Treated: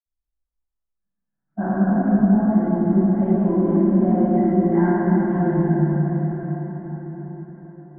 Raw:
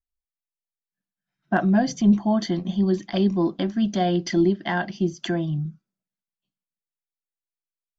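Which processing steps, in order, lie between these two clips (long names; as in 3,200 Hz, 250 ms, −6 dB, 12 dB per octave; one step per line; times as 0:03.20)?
inverse Chebyshev low-pass filter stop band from 3,800 Hz, stop band 50 dB
low-shelf EQ 470 Hz +7 dB
downward compressor, threshold −15 dBFS, peak gain reduction 9 dB
convolution reverb RT60 5.6 s, pre-delay 49 ms, DRR −60 dB
level +2 dB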